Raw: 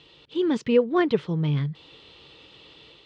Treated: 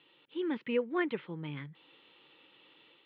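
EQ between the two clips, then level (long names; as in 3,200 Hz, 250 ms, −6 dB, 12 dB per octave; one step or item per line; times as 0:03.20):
dynamic equaliser 2,200 Hz, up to +5 dB, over −47 dBFS, Q 2.5
high-frequency loss of the air 300 metres
loudspeaker in its box 340–3,700 Hz, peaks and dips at 430 Hz −9 dB, 660 Hz −9 dB, 1,100 Hz −4 dB
−4.0 dB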